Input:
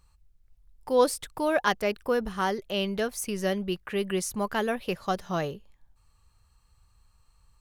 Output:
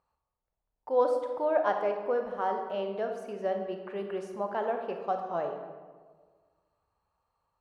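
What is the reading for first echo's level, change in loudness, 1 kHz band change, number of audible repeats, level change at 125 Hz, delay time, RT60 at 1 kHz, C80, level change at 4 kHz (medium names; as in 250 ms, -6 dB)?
no echo, -3.0 dB, -1.0 dB, no echo, -13.0 dB, no echo, 1.4 s, 7.5 dB, -16.5 dB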